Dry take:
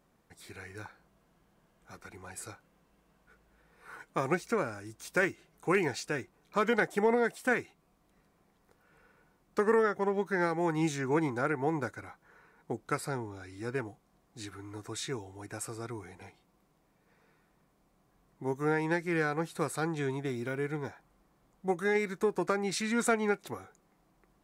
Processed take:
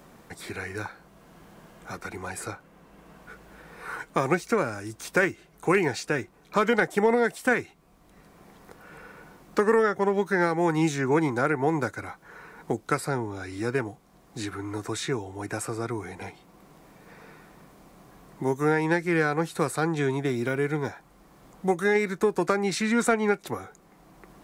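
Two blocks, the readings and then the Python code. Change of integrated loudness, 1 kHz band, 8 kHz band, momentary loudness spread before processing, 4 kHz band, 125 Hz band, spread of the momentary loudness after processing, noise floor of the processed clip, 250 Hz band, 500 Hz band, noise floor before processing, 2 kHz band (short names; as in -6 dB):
+5.5 dB, +6.0 dB, +5.0 dB, 17 LU, +5.5 dB, +6.5 dB, 16 LU, -57 dBFS, +6.5 dB, +6.0 dB, -70 dBFS, +6.0 dB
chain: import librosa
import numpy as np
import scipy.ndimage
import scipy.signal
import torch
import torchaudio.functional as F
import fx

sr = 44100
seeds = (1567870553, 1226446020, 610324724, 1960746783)

y = fx.band_squash(x, sr, depth_pct=40)
y = y * 10.0 ** (6.5 / 20.0)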